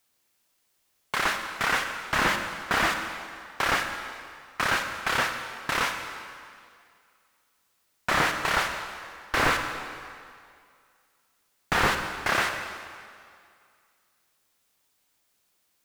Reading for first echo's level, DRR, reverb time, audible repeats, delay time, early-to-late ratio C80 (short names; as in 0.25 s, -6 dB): none, 5.5 dB, 2.2 s, none, none, 7.0 dB